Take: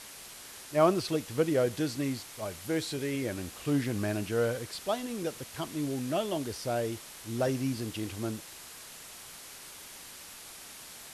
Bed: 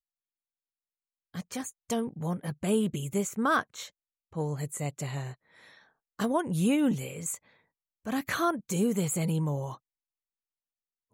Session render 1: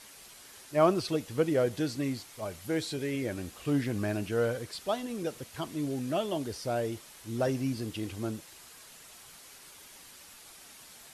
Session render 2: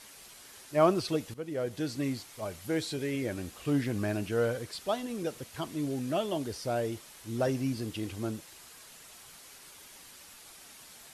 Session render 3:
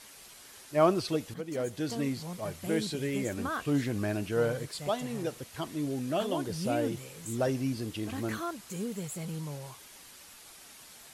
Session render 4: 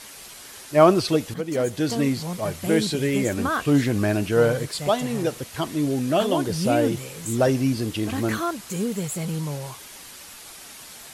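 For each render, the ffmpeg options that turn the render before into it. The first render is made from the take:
-af "afftdn=nr=6:nf=-48"
-filter_complex "[0:a]asplit=2[a][b];[a]atrim=end=1.34,asetpts=PTS-STARTPTS,afade=t=out:st=1.336:d=0.004:c=hsin:silence=0.158489[c];[b]atrim=start=1.34,asetpts=PTS-STARTPTS,afade=t=in:d=0.69:silence=0.158489[d];[c][d]concat=n=2:v=0:a=1"
-filter_complex "[1:a]volume=-9dB[a];[0:a][a]amix=inputs=2:normalize=0"
-af "volume=9.5dB,alimiter=limit=-3dB:level=0:latency=1"

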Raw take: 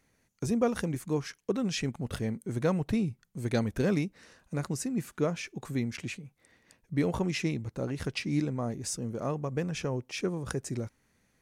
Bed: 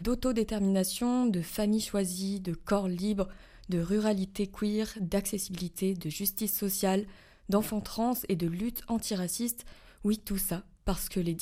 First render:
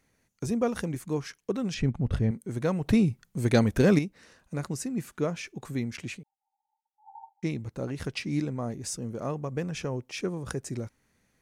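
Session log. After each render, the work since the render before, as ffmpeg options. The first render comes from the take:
-filter_complex "[0:a]asettb=1/sr,asplit=3[a][b][c];[a]atrim=end=1.744[d];[b]atrim=start=1.74:end=2.31,asetpts=PTS-STARTPTS,afade=t=in:d=0.004:c=qsin,afade=t=out:st=0.566:d=0.004:c=qsin,aemphasis=mode=reproduction:type=bsi[e];[c]atrim=start=2.306[f];[d][e]acrossfade=d=0.004:c1=hsin:c2=qsin[g];[g][f]acrossfade=d=0.004:c1=qsin:c2=hsin,asettb=1/sr,asplit=3[h][i][j];[h]atrim=end=2.844[k];[i]atrim=start=2.84:end=3.99,asetpts=PTS-STARTPTS,afade=t=in:d=0.004:c=qsin,afade=t=out:st=1.146:d=0.004:c=qsin,acontrast=74[l];[j]atrim=start=3.986[m];[k][l]acrossfade=d=0.004:c1=hsin:c2=qsin[n];[n][m]acrossfade=d=0.004:c1=qsin:c2=hsin,asettb=1/sr,asplit=3[o][p][q];[o]atrim=end=6.234[r];[p]atrim=start=6.23:end=7.43,asetpts=PTS-STARTPTS,afade=t=in:d=0.004:c=qsin,afade=t=out:st=1.196:d=0.004:c=qsin,asuperpass=centerf=840:order=20:qfactor=5.9[s];[q]atrim=start=7.426[t];[r][s]acrossfade=d=0.004:c1=hsin:c2=qsin[u];[u][t]acrossfade=d=0.004:c1=qsin:c2=hsin"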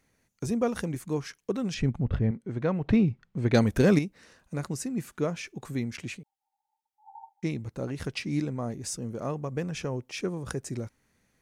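-filter_complex "[0:a]asettb=1/sr,asplit=3[a][b][c];[a]atrim=end=2.044[d];[b]atrim=start=2.04:end=3.54,asetpts=PTS-STARTPTS,afade=t=in:d=0.004:c=qsin,afade=t=out:st=1.496:d=0.004:c=qsin,lowpass=3k[e];[c]atrim=start=3.536[f];[d][e]acrossfade=d=0.004:c1=hsin:c2=qsin[g];[g][f]acrossfade=d=0.004:c1=qsin:c2=hsin"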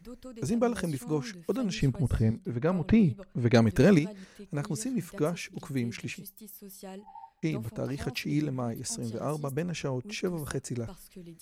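-filter_complex "[1:a]volume=-16dB[a];[0:a][a]amix=inputs=2:normalize=0"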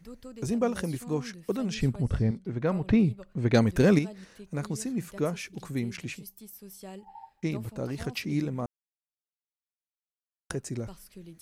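-filter_complex "[0:a]asettb=1/sr,asplit=3[a][b][c];[a]atrim=end=2.044[d];[b]atrim=start=2.04:end=2.56,asetpts=PTS-STARTPTS,afade=t=in:d=0.004:c=qsin,afade=t=out:st=0.516:d=0.004:c=qsin,lowpass=6.6k[e];[c]atrim=start=2.556[f];[d][e]acrossfade=d=0.004:c1=hsin:c2=qsin[g];[g][f]acrossfade=d=0.004:c1=qsin:c2=hsin,asplit=3[h][i][j];[h]atrim=end=8.66,asetpts=PTS-STARTPTS,afade=t=out:st=8.656:d=0.004:c=hsin[k];[i]atrim=start=8.66:end=10.5,asetpts=PTS-STARTPTS,volume=0[l];[j]atrim=start=10.5,asetpts=PTS-STARTPTS,afade=t=in:d=0.004:c=hsin[m];[k][l][m]concat=n=3:v=0:a=1"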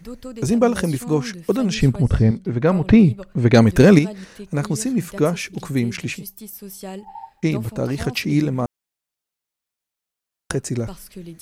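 -af "volume=10.5dB,alimiter=limit=-1dB:level=0:latency=1"

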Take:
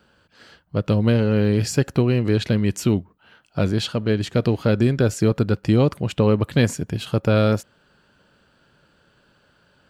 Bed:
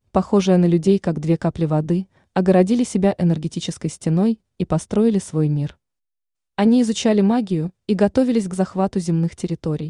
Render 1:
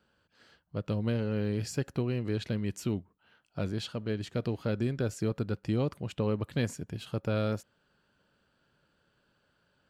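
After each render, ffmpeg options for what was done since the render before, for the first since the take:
-af "volume=-12.5dB"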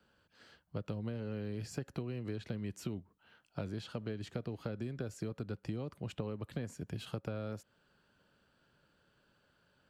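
-filter_complex "[0:a]acrossover=split=180|460|1800[a][b][c][d];[d]alimiter=level_in=13.5dB:limit=-24dB:level=0:latency=1:release=68,volume=-13.5dB[e];[a][b][c][e]amix=inputs=4:normalize=0,acompressor=threshold=-35dB:ratio=10"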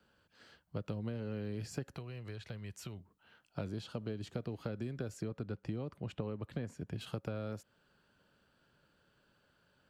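-filter_complex "[0:a]asettb=1/sr,asplit=3[a][b][c];[a]atrim=end=1.964[d];[b]atrim=start=1.96:end=3,asetpts=PTS-STARTPTS,afade=t=in:d=0.004:c=qsin,afade=t=out:st=1.036:d=0.004:c=qsin,equalizer=f=270:w=0.98:g=-12.5[e];[c]atrim=start=2.996[f];[d][e]acrossfade=d=0.004:c1=hsin:c2=qsin[g];[g][f]acrossfade=d=0.004:c1=qsin:c2=hsin,asettb=1/sr,asplit=3[h][i][j];[h]atrim=end=3.684[k];[i]atrim=start=3.68:end=4.37,asetpts=PTS-STARTPTS,afade=t=in:d=0.004:c=qsin,afade=t=out:st=0.686:d=0.004:c=qsin,equalizer=f=1.9k:t=o:w=0.77:g=-5[l];[j]atrim=start=4.366[m];[k][l]acrossfade=d=0.004:c1=hsin:c2=qsin[n];[n][m]acrossfade=d=0.004:c1=qsin:c2=hsin,asettb=1/sr,asplit=3[o][p][q];[o]atrim=end=5.214[r];[p]atrim=start=5.21:end=7.01,asetpts=PTS-STARTPTS,afade=t=in:d=0.004:c=qsin,afade=t=out:st=1.796:d=0.004:c=qsin,highshelf=f=5k:g=-9[s];[q]atrim=start=7.006[t];[r][s]acrossfade=d=0.004:c1=hsin:c2=qsin[u];[u][t]acrossfade=d=0.004:c1=qsin:c2=hsin"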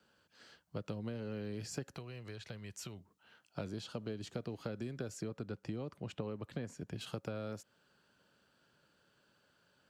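-af "highpass=f=130:p=1,equalizer=f=6.3k:t=o:w=1.1:g=5"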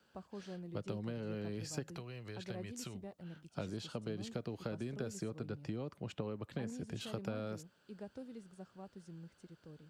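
-filter_complex "[1:a]volume=-32dB[a];[0:a][a]amix=inputs=2:normalize=0"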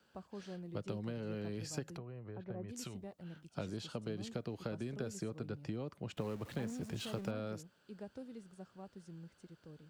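-filter_complex "[0:a]asplit=3[a][b][c];[a]afade=t=out:st=1.96:d=0.02[d];[b]lowpass=1.1k,afade=t=in:st=1.96:d=0.02,afade=t=out:st=2.68:d=0.02[e];[c]afade=t=in:st=2.68:d=0.02[f];[d][e][f]amix=inputs=3:normalize=0,asettb=1/sr,asplit=3[g][h][i];[g]atrim=end=6.174[j];[h]atrim=start=6.17:end=7.31,asetpts=PTS-STARTPTS,afade=t=in:d=0.004:c=qsin,afade=t=out:st=1.136:d=0.004:c=qsin,aeval=exprs='val(0)+0.5*0.00335*sgn(val(0))':c=same[k];[i]atrim=start=7.306[l];[j][k]acrossfade=d=0.004:c1=hsin:c2=qsin[m];[m][l]acrossfade=d=0.004:c1=qsin:c2=hsin"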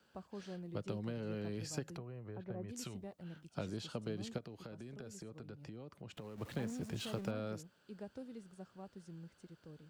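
-filter_complex "[0:a]asettb=1/sr,asplit=3[a][b][c];[a]atrim=end=4.384[d];[b]atrim=start=4.38:end=6.38,asetpts=PTS-STARTPTS,afade=t=in:d=0.004:c=qsin,afade=t=out:st=1.996:d=0.004:c=qsin,acompressor=threshold=-49dB:ratio=2.5:attack=3.2:release=140:knee=1:detection=peak[e];[c]atrim=start=6.376[f];[d][e]acrossfade=d=0.004:c1=hsin:c2=qsin[g];[g][f]acrossfade=d=0.004:c1=qsin:c2=hsin"

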